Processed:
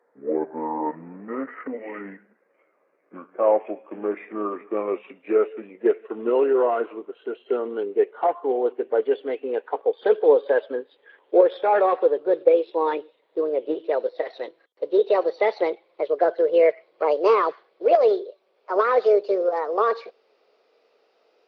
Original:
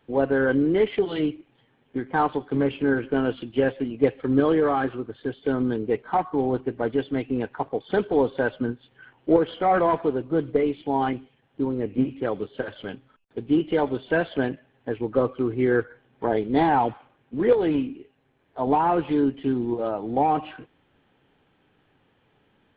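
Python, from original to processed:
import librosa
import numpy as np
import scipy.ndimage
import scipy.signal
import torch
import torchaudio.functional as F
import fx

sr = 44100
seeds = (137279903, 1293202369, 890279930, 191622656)

y = fx.speed_glide(x, sr, from_pct=55, to_pct=157)
y = fx.ladder_highpass(y, sr, hz=410.0, resonance_pct=60)
y = y * 10.0 ** (8.0 / 20.0)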